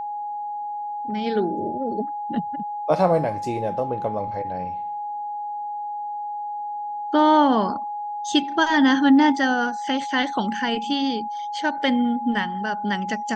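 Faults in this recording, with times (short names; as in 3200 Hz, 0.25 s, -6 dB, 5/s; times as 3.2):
tone 830 Hz -27 dBFS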